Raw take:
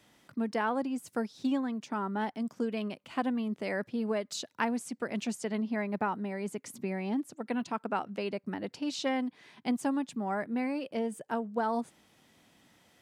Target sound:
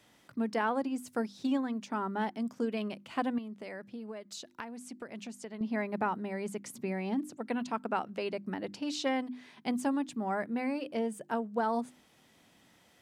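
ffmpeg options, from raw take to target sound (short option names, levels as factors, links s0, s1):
-filter_complex "[0:a]bandreject=f=50:t=h:w=6,bandreject=f=100:t=h:w=6,bandreject=f=150:t=h:w=6,bandreject=f=200:t=h:w=6,bandreject=f=250:t=h:w=6,bandreject=f=300:t=h:w=6,bandreject=f=350:t=h:w=6,asettb=1/sr,asplit=3[s0][s1][s2];[s0]atrim=end=3.384[s3];[s1]atrim=start=3.38:end=5.61,asetpts=PTS-STARTPTS,afade=t=in:d=0.004:c=qsin,afade=t=out:st=2.226:d=0.004:c=qsin,acompressor=threshold=0.00891:ratio=5[s4];[s2]atrim=start=5.606[s5];[s3][s4]acrossfade=d=0.004:c1=hsin:c2=qsin[s6];[s6][s5]acrossfade=d=0.004:c1=qsin:c2=hsin"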